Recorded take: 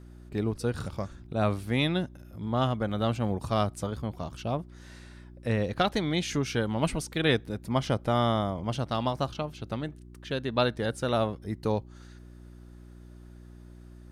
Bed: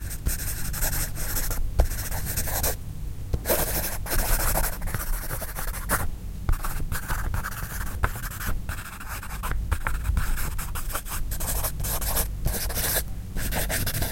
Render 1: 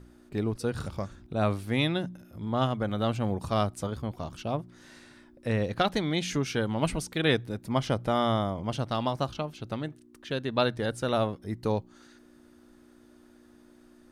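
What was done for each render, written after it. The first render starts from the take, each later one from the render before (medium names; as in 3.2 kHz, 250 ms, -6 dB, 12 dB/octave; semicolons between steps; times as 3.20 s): de-hum 60 Hz, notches 3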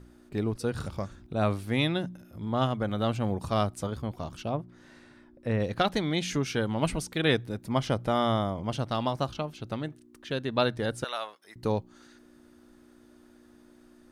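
4.49–5.60 s: treble shelf 3 kHz -10 dB; 11.04–11.56 s: high-pass 1.1 kHz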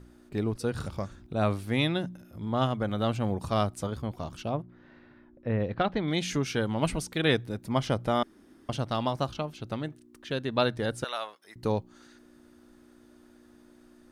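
4.62–6.08 s: distance through air 320 m; 8.23–8.69 s: room tone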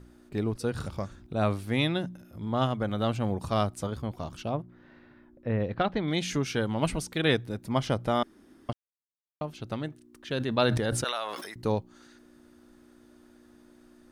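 8.73–9.41 s: mute; 10.27–11.75 s: decay stretcher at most 33 dB/s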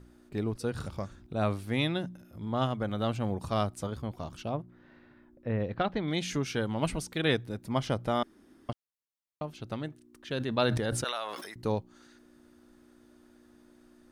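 trim -2.5 dB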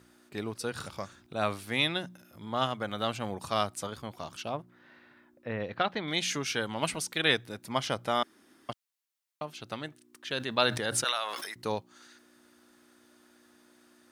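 high-pass 100 Hz; tilt shelf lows -6.5 dB, about 650 Hz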